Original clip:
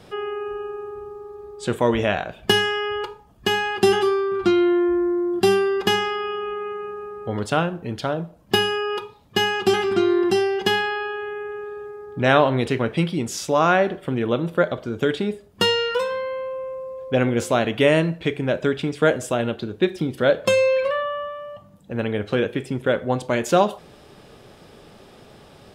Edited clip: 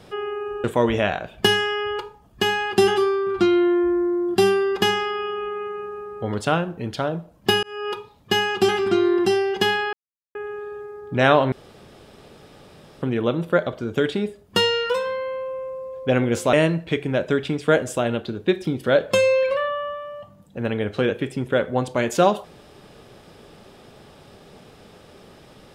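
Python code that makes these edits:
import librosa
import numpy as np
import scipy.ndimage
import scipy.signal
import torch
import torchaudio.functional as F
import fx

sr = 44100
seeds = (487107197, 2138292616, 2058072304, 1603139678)

y = fx.edit(x, sr, fx.cut(start_s=0.64, length_s=1.05),
    fx.fade_in_span(start_s=8.68, length_s=0.3),
    fx.silence(start_s=10.98, length_s=0.42),
    fx.room_tone_fill(start_s=12.57, length_s=1.5),
    fx.cut(start_s=17.58, length_s=0.29), tone=tone)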